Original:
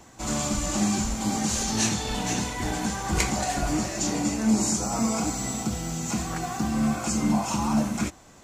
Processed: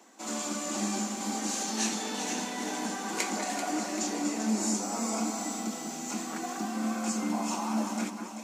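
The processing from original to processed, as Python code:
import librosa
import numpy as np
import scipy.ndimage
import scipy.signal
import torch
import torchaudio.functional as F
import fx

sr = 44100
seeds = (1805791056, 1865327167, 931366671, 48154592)

p1 = scipy.signal.sosfilt(scipy.signal.butter(8, 210.0, 'highpass', fs=sr, output='sos'), x)
p2 = p1 + fx.echo_alternate(p1, sr, ms=194, hz=2000.0, feedback_pct=70, wet_db=-5.0, dry=0)
y = F.gain(torch.from_numpy(p2), -5.5).numpy()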